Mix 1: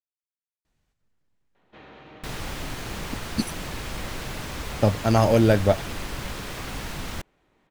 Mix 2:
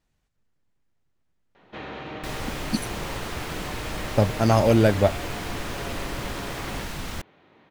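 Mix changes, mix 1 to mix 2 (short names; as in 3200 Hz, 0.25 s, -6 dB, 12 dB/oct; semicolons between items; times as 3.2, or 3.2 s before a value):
speech: entry -0.65 s; first sound +10.5 dB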